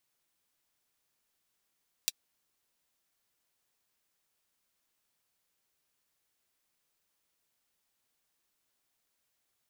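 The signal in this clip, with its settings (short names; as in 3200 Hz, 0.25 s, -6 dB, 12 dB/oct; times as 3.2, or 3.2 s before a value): closed hi-hat, high-pass 3500 Hz, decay 0.04 s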